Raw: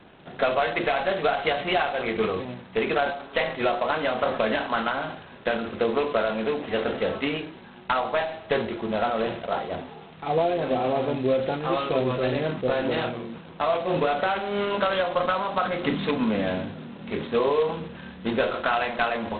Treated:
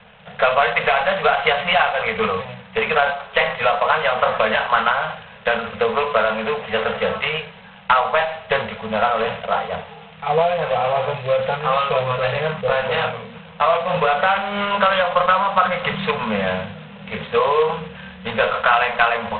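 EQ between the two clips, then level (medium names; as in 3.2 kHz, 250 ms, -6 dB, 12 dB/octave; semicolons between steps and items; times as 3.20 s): elliptic band-stop 210–450 Hz, stop band 40 dB; dynamic bell 1.1 kHz, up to +6 dB, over -40 dBFS, Q 1.4; resonant low-pass 2.9 kHz, resonance Q 1.6; +4.5 dB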